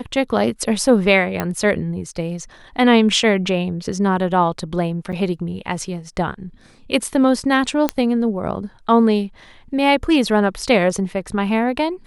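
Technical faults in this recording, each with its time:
1.4 pop -7 dBFS
5.12–5.13 gap 7.4 ms
7.89 pop -4 dBFS

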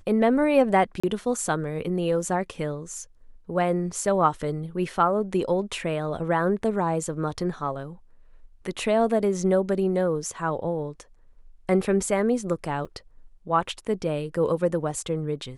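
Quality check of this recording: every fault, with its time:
1–1.03 gap 35 ms
12.85 gap 4.1 ms

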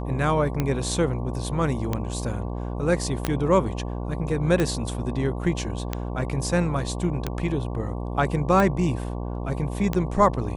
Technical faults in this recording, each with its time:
buzz 60 Hz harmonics 19 -30 dBFS
tick 45 rpm -11 dBFS
3.25 pop -9 dBFS

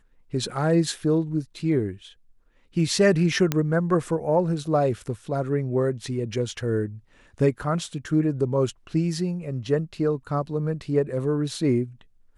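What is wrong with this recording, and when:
3.52 pop -8 dBFS

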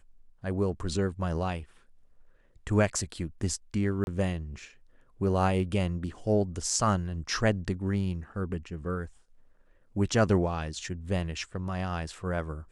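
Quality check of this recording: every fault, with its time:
4.04–4.07 gap 31 ms

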